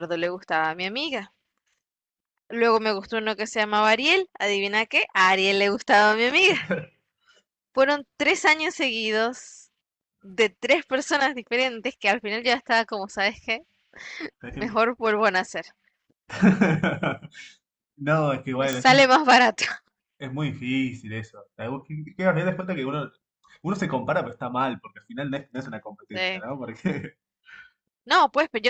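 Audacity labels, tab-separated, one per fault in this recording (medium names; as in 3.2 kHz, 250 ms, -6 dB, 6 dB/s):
18.730000	18.730000	pop -11 dBFS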